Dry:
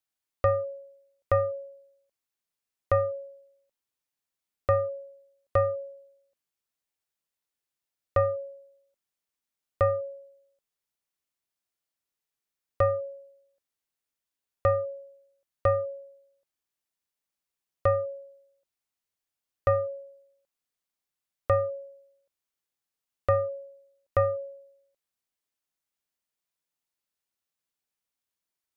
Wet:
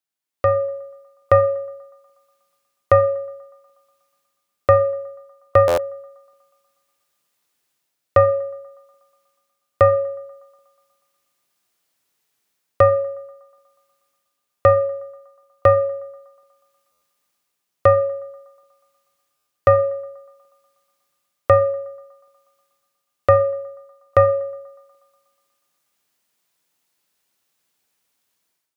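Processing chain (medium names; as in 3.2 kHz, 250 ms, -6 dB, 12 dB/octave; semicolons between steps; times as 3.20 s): high-pass 100 Hz 12 dB/octave; level rider gain up to 16 dB; band-passed feedback delay 121 ms, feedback 71%, band-pass 970 Hz, level -24 dB; Schroeder reverb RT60 0.54 s, combs from 26 ms, DRR 15 dB; buffer glitch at 5.67/16.91/19.36 s, samples 512, times 8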